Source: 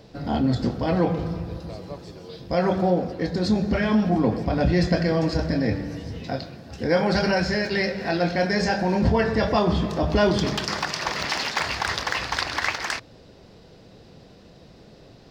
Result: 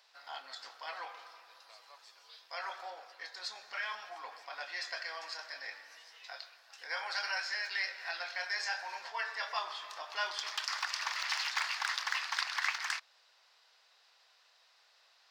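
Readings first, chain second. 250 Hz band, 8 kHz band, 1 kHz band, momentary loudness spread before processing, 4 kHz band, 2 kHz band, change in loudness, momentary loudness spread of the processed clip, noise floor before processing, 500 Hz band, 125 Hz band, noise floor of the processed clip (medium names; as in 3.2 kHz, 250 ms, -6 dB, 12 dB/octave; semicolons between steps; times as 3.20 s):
under -40 dB, -7.5 dB, -12.5 dB, 11 LU, -7.5 dB, -7.5 dB, -13.5 dB, 17 LU, -49 dBFS, -27.5 dB, under -40 dB, -67 dBFS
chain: high-pass 1 kHz 24 dB/octave; trim -7.5 dB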